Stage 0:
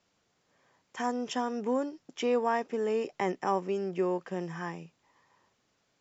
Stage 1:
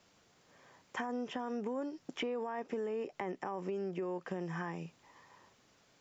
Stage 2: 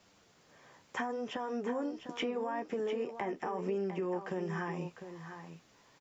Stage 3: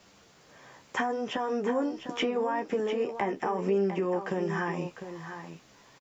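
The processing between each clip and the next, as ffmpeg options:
-filter_complex "[0:a]acrossover=split=2700[a][b];[b]acompressor=threshold=-59dB:ratio=4:attack=1:release=60[c];[a][c]amix=inputs=2:normalize=0,alimiter=level_in=2dB:limit=-24dB:level=0:latency=1:release=32,volume=-2dB,acompressor=threshold=-42dB:ratio=6,volume=6.5dB"
-af "flanger=delay=9.7:depth=4.2:regen=-39:speed=0.77:shape=sinusoidal,aecho=1:1:702:0.316,volume=6dB"
-filter_complex "[0:a]asplit=2[a][b];[b]adelay=15,volume=-11dB[c];[a][c]amix=inputs=2:normalize=0,volume=6.5dB"

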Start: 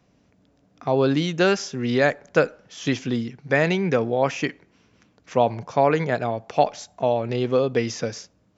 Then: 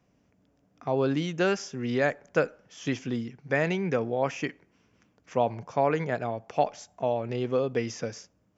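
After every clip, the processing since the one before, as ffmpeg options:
-af "equalizer=f=4k:t=o:w=0.38:g=-7,volume=-6dB"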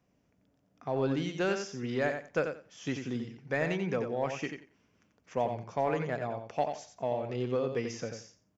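-filter_complex "[0:a]asplit=2[a][b];[b]asoftclip=type=hard:threshold=-22dB,volume=-9dB[c];[a][c]amix=inputs=2:normalize=0,aecho=1:1:89|178|267:0.447|0.0804|0.0145,volume=-7.5dB"

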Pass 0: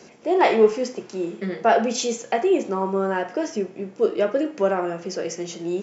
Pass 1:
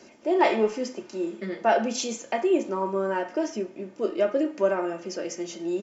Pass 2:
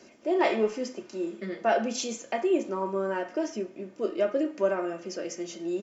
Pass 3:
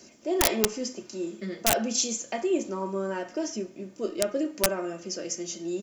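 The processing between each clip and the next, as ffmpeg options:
-af "aecho=1:1:3.3:0.51,volume=-4.5dB"
-af "bandreject=f=880:w=12,volume=-2.5dB"
-af "aeval=exprs='(mod(5.62*val(0)+1,2)-1)/5.62':c=same,bass=f=250:g=7,treble=f=4k:g=13,volume=-2.5dB"

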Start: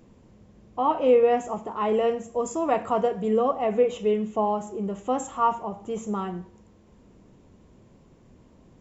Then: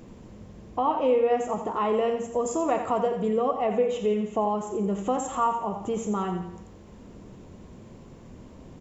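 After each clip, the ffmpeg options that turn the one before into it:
-af "acompressor=threshold=-37dB:ratio=2,aecho=1:1:86|172|258|344|430:0.355|0.156|0.0687|0.0302|0.0133,volume=7.5dB"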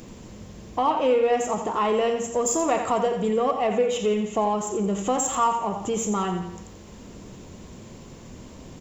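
-filter_complex "[0:a]highshelf=f=2.6k:g=11.5,asplit=2[a][b];[b]asoftclip=type=tanh:threshold=-29dB,volume=-7dB[c];[a][c]amix=inputs=2:normalize=0"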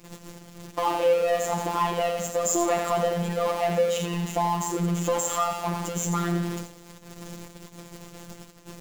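-af "aeval=exprs='val(0)+0.5*0.0473*sgn(val(0))':c=same,afftfilt=real='hypot(re,im)*cos(PI*b)':imag='0':win_size=1024:overlap=0.75,agate=range=-20dB:threshold=-31dB:ratio=16:detection=peak"

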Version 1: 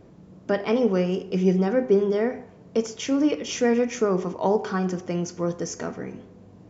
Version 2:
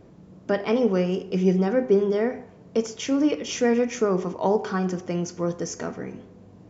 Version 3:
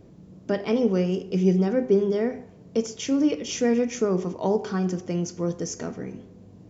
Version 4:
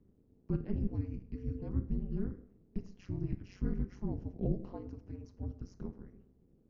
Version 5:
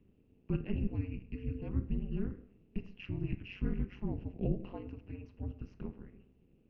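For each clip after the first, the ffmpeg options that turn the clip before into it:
-af anull
-af "equalizer=f=1.2k:t=o:w=2.5:g=-7,volume=1.5dB"
-af "bandpass=f=630:t=q:w=3.9:csg=0,afreqshift=-440,tremolo=f=190:d=1,volume=2.5dB"
-af "lowpass=f=2.7k:t=q:w=9.3"

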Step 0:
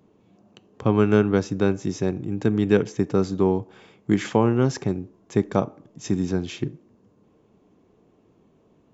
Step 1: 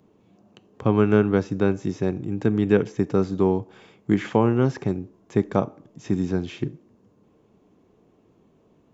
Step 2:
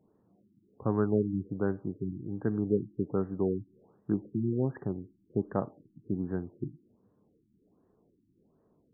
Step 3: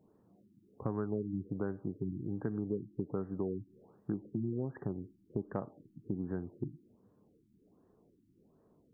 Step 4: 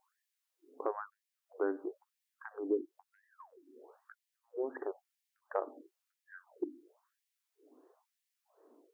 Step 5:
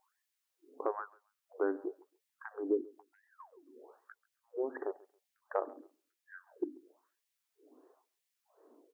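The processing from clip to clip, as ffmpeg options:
-filter_complex "[0:a]acrossover=split=3200[a][b];[b]acompressor=threshold=-49dB:ratio=4:attack=1:release=60[c];[a][c]amix=inputs=2:normalize=0"
-af "afftfilt=real='re*lt(b*sr/1024,340*pow(2000/340,0.5+0.5*sin(2*PI*1.3*pts/sr)))':imag='im*lt(b*sr/1024,340*pow(2000/340,0.5+0.5*sin(2*PI*1.3*pts/sr)))':win_size=1024:overlap=0.75,volume=-9dB"
-af "acompressor=threshold=-34dB:ratio=4,volume=1dB"
-af "afftfilt=real='re*gte(b*sr/1024,240*pow(1700/240,0.5+0.5*sin(2*PI*1*pts/sr)))':imag='im*gte(b*sr/1024,240*pow(1700/240,0.5+0.5*sin(2*PI*1*pts/sr)))':win_size=1024:overlap=0.75,volume=6dB"
-af "aecho=1:1:137|274:0.0668|0.0134,volume=1dB"

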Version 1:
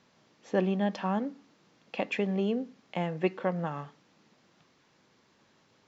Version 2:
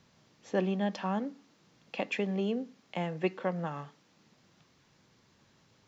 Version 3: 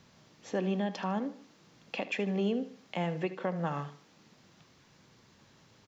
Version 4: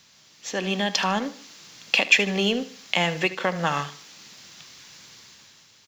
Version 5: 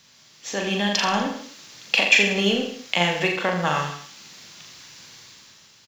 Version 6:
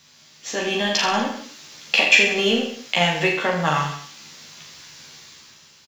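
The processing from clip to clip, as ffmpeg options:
-filter_complex "[0:a]highshelf=f=4.2k:g=6,acrossover=split=150[a][b];[a]acompressor=mode=upward:threshold=-58dB:ratio=2.5[c];[c][b]amix=inputs=2:normalize=0,volume=-2.5dB"
-af "alimiter=level_in=2dB:limit=-24dB:level=0:latency=1:release=265,volume=-2dB,aecho=1:1:76|152|228:0.178|0.0676|0.0257,volume=4dB"
-filter_complex "[0:a]tiltshelf=f=1.5k:g=-10,asplit=2[a][b];[b]aeval=exprs='sgn(val(0))*max(abs(val(0))-0.00473,0)':c=same,volume=-8.5dB[c];[a][c]amix=inputs=2:normalize=0,dynaudnorm=f=140:g=9:m=9dB,volume=3.5dB"
-af "aecho=1:1:40|84|132.4|185.6|244.2:0.631|0.398|0.251|0.158|0.1"
-filter_complex "[0:a]asplit=2[a][b];[b]adelay=13,volume=-3dB[c];[a][c]amix=inputs=2:normalize=0"

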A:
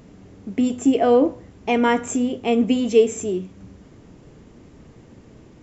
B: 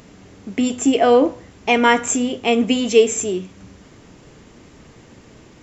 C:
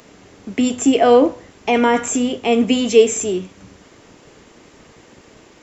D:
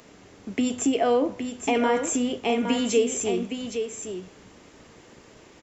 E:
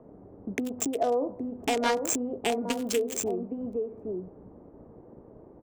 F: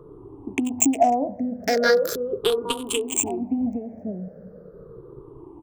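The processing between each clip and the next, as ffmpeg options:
-af "tiltshelf=f=780:g=-5,volume=4.5dB"
-filter_complex "[0:a]acrossover=split=290|840[a][b][c];[a]aeval=exprs='sgn(val(0))*max(abs(val(0))-0.00335,0)':c=same[d];[c]alimiter=limit=-16.5dB:level=0:latency=1:release=18[e];[d][b][e]amix=inputs=3:normalize=0,volume=2dB"
-filter_complex "[0:a]acompressor=threshold=-17dB:ratio=2,asplit=2[a][b];[b]aecho=0:1:815:0.422[c];[a][c]amix=inputs=2:normalize=0,volume=-5dB"
-filter_complex "[0:a]acrossover=split=600|800[a][b][c];[a]acompressor=threshold=-33dB:ratio=6[d];[c]acrusher=bits=3:mix=0:aa=0.5[e];[d][b][e]amix=inputs=3:normalize=0,volume=2dB"
-af "afftfilt=real='re*pow(10,22/40*sin(2*PI*(0.63*log(max(b,1)*sr/1024/100)/log(2)-(-0.39)*(pts-256)/sr)))':imag='im*pow(10,22/40*sin(2*PI*(0.63*log(max(b,1)*sr/1024/100)/log(2)-(-0.39)*(pts-256)/sr)))':win_size=1024:overlap=0.75,volume=1.5dB"

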